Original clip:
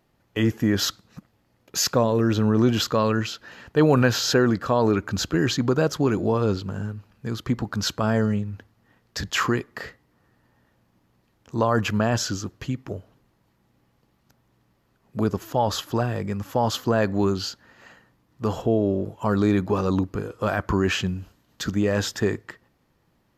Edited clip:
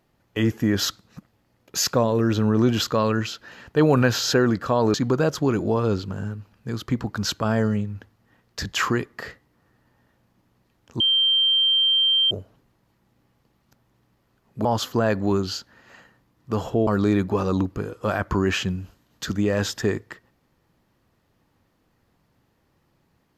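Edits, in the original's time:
0:04.94–0:05.52: remove
0:11.58–0:12.89: beep over 3,150 Hz −16 dBFS
0:15.23–0:16.57: remove
0:18.79–0:19.25: remove

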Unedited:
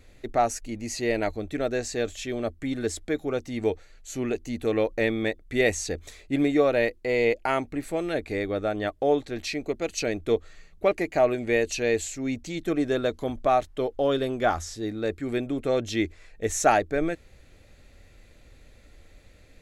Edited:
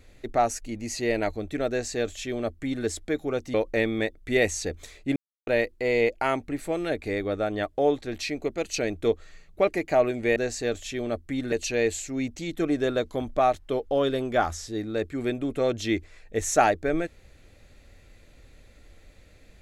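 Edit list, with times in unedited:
0:01.69–0:02.85: duplicate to 0:11.60
0:03.54–0:04.78: remove
0:06.40–0:06.71: silence

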